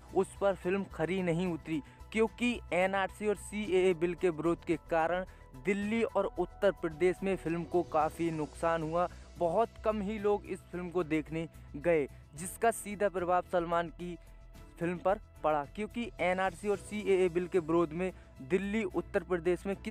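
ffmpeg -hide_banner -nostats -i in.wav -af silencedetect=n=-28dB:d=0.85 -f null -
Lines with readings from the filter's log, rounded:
silence_start: 13.81
silence_end: 14.82 | silence_duration: 1.00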